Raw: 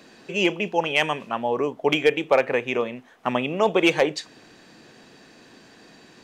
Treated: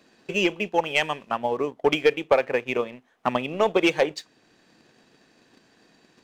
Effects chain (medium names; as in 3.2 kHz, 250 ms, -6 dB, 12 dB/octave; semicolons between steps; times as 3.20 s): transient shaper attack +7 dB, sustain -2 dB; waveshaping leveller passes 1; trim -7.5 dB